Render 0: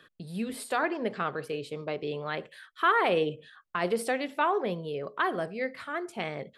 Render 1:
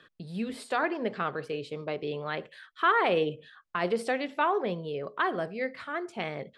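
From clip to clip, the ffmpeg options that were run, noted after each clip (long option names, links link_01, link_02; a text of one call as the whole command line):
ffmpeg -i in.wav -af "lowpass=6600" out.wav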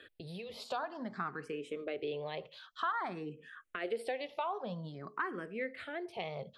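ffmpeg -i in.wav -filter_complex "[0:a]acompressor=threshold=-41dB:ratio=2.5,asplit=2[link_01][link_02];[link_02]afreqshift=0.52[link_03];[link_01][link_03]amix=inputs=2:normalize=1,volume=4dB" out.wav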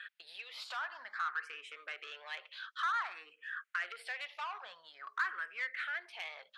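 ffmpeg -i in.wav -filter_complex "[0:a]asplit=2[link_01][link_02];[link_02]highpass=frequency=720:poles=1,volume=18dB,asoftclip=type=tanh:threshold=-22dB[link_03];[link_01][link_03]amix=inputs=2:normalize=0,lowpass=frequency=3700:poles=1,volume=-6dB,highpass=frequency=1500:width_type=q:width=2.3,volume=-7.5dB" out.wav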